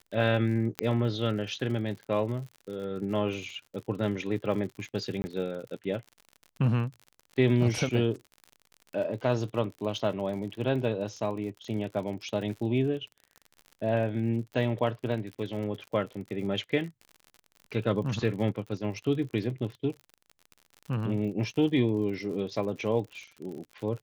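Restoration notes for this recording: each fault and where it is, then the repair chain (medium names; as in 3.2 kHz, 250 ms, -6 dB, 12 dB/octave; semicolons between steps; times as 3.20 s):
crackle 58 per s -38 dBFS
0.79 s: pop -12 dBFS
5.22–5.24 s: dropout 20 ms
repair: de-click; interpolate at 5.22 s, 20 ms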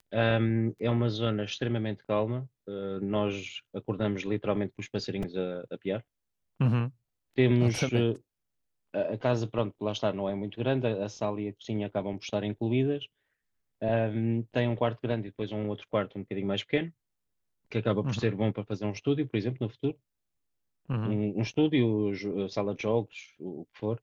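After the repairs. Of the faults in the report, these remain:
0.79 s: pop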